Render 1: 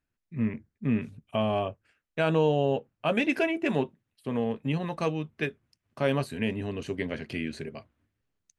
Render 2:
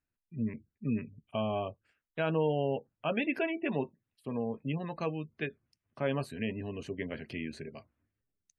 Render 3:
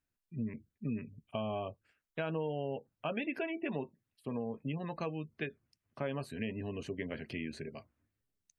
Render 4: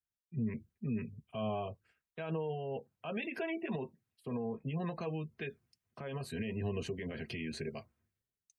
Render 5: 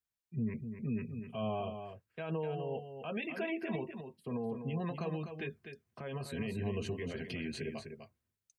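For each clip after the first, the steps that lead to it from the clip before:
gate on every frequency bin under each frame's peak −30 dB strong; level −5.5 dB
downward compressor 3 to 1, threshold −34 dBFS, peak gain reduction 7.5 dB
brickwall limiter −32.5 dBFS, peak gain reduction 10 dB; notch comb filter 290 Hz; multiband upward and downward expander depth 40%; level +5 dB
single-tap delay 251 ms −8 dB

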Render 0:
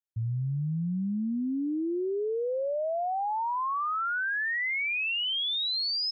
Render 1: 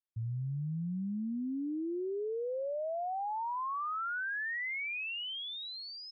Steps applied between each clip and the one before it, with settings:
low-pass filter 2,800 Hz
level −6 dB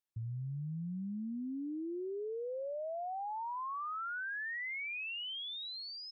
downward compressor 2 to 1, threshold −41 dBFS, peak gain reduction 4 dB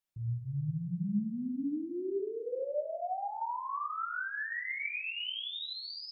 rectangular room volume 290 cubic metres, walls mixed, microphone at 1.1 metres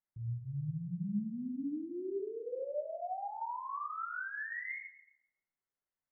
linear-phase brick-wall low-pass 2,200 Hz
level −3.5 dB

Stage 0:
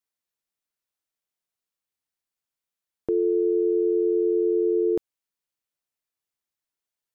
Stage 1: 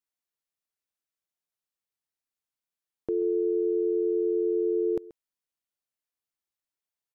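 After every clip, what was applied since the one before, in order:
single-tap delay 132 ms −19 dB
level −4.5 dB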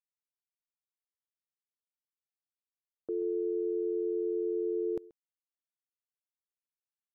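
downward expander −35 dBFS
level −6 dB

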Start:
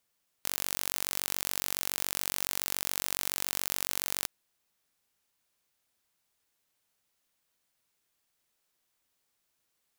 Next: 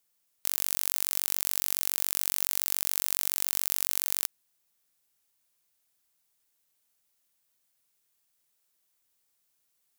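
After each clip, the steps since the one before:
high-shelf EQ 5,900 Hz +9.5 dB
level −3.5 dB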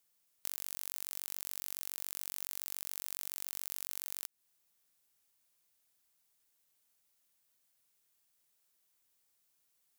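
downward compressor 6 to 1, threshold −32 dBFS, peak gain reduction 11 dB
level −1.5 dB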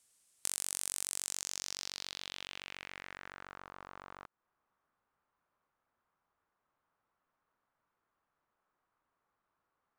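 low-pass filter sweep 8,800 Hz → 1,200 Hz, 0:01.13–0:03.69
level +4.5 dB

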